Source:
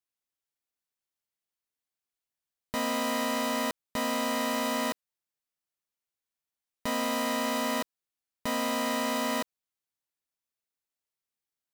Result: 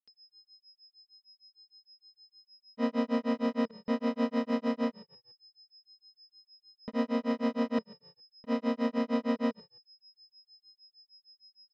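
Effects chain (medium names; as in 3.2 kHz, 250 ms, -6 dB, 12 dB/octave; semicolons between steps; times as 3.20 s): peak limiter -24.5 dBFS, peak gain reduction 6 dB; frequency-shifting echo 144 ms, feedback 40%, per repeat -44 Hz, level -24 dB; whistle 5.1 kHz -41 dBFS; distance through air 240 m; small resonant body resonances 220/450 Hz, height 14 dB, ringing for 50 ms; granulator 151 ms, grains 6.5 per s, pitch spread up and down by 0 st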